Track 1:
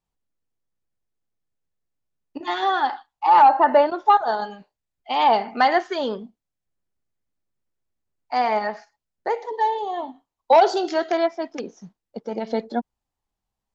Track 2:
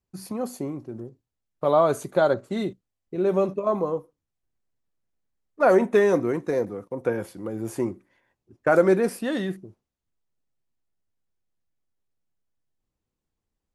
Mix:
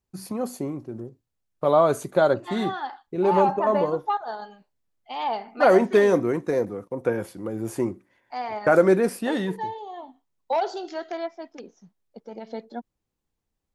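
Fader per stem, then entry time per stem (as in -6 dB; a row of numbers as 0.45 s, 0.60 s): -10.0 dB, +1.0 dB; 0.00 s, 0.00 s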